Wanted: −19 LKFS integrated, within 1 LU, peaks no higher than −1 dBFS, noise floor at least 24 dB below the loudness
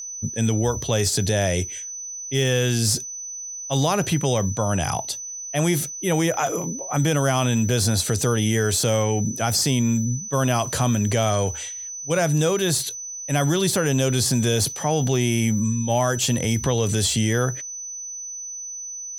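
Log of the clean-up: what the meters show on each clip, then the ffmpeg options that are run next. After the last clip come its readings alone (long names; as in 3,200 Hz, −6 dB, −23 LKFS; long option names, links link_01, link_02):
interfering tone 6,000 Hz; level of the tone −31 dBFS; integrated loudness −22.5 LKFS; sample peak −6.5 dBFS; target loudness −19.0 LKFS
→ -af "bandreject=frequency=6000:width=30"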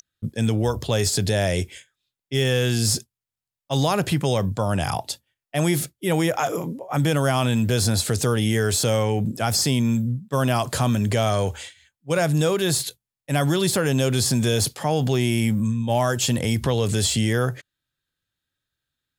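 interfering tone none found; integrated loudness −22.5 LKFS; sample peak −6.5 dBFS; target loudness −19.0 LKFS
→ -af "volume=3.5dB"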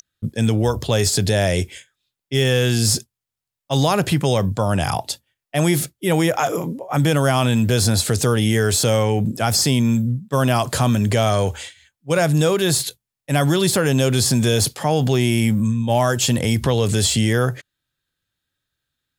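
integrated loudness −19.0 LKFS; sample peak −3.0 dBFS; background noise floor −85 dBFS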